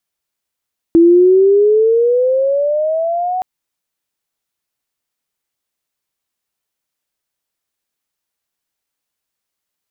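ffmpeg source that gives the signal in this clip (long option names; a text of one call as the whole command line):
ffmpeg -f lavfi -i "aevalsrc='pow(10,(-4-11.5*t/2.47)/20)*sin(2*PI*330*2.47/log(750/330)*(exp(log(750/330)*t/2.47)-1))':duration=2.47:sample_rate=44100" out.wav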